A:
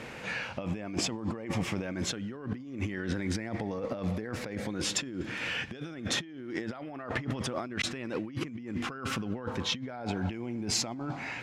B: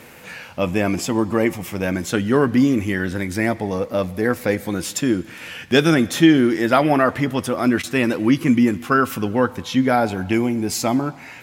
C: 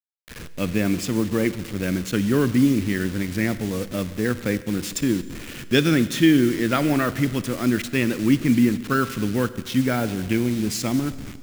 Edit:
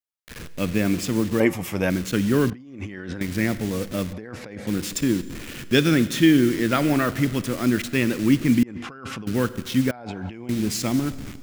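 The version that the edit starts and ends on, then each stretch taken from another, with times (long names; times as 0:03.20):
C
0:01.40–0:01.90: punch in from B
0:02.50–0:03.21: punch in from A
0:04.13–0:04.67: punch in from A
0:08.63–0:09.27: punch in from A
0:09.91–0:10.49: punch in from A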